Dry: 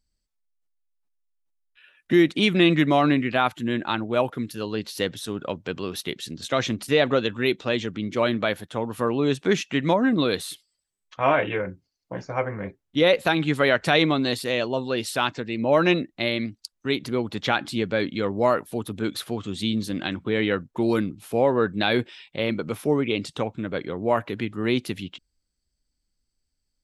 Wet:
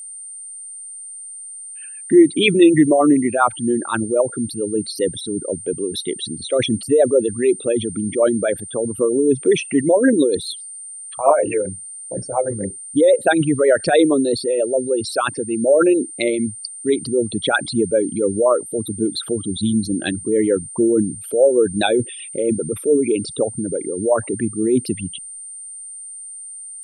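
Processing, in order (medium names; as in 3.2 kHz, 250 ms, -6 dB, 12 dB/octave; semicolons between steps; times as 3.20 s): resonances exaggerated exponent 3; rotary cabinet horn 7.5 Hz; whistle 8.9 kHz -40 dBFS; trim +8 dB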